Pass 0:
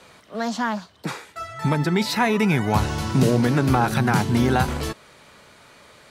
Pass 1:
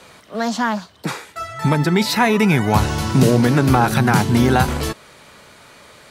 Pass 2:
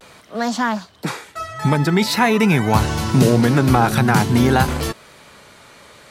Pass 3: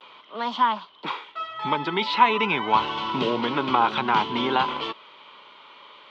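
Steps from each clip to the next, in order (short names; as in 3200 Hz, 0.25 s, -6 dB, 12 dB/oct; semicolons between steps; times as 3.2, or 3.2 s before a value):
high shelf 9500 Hz +4 dB; gain +4.5 dB
vibrato 0.48 Hz 38 cents
speaker cabinet 430–3400 Hz, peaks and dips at 500 Hz -4 dB, 700 Hz -8 dB, 1000 Hz +9 dB, 1700 Hz -10 dB, 3200 Hz +10 dB; gain -2.5 dB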